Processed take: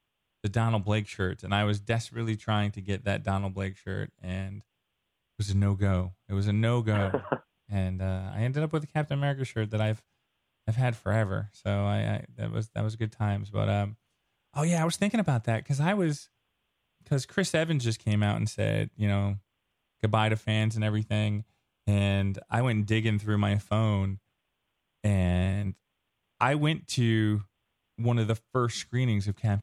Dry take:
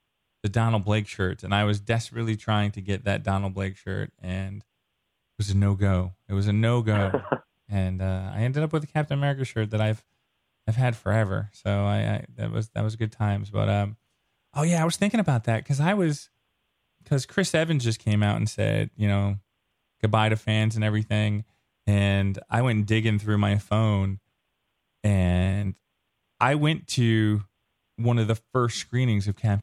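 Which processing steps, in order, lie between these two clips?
20.74–22.32 notch 1900 Hz, Q 5.2; gain -3.5 dB

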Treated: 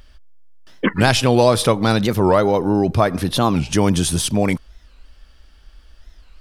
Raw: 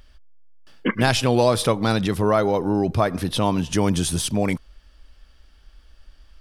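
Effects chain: record warp 45 rpm, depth 250 cents; gain +4 dB

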